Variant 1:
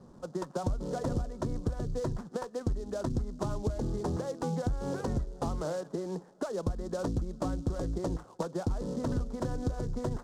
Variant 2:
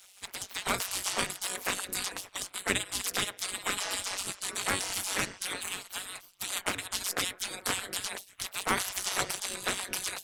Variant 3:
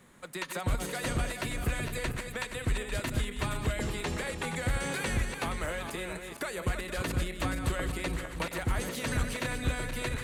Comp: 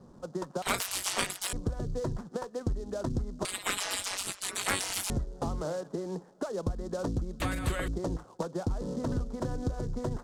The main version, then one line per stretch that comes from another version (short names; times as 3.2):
1
0.62–1.53 from 2
3.45–5.1 from 2
7.4–7.88 from 3